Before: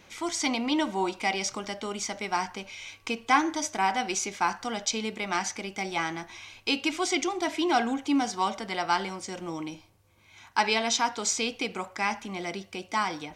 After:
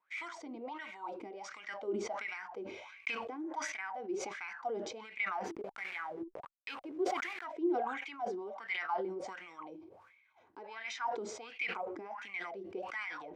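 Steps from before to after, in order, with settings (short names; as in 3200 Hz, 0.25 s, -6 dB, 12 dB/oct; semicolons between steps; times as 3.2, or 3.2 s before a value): 5.45–7.46 level-crossing sampler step -31.5 dBFS; gate -52 dBFS, range -20 dB; compressor 4:1, threshold -35 dBFS, peak gain reduction 16 dB; wah 1.4 Hz 330–2300 Hz, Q 8.8; sustainer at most 44 dB/s; gain +8.5 dB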